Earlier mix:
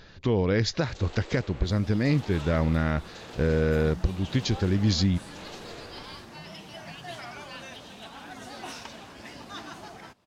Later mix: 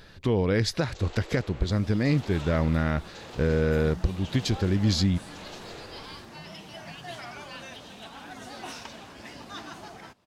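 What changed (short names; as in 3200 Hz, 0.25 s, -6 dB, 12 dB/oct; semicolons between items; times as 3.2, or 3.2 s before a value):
speech: remove brick-wall FIR low-pass 7300 Hz; first sound: add steep high-pass 270 Hz 72 dB/oct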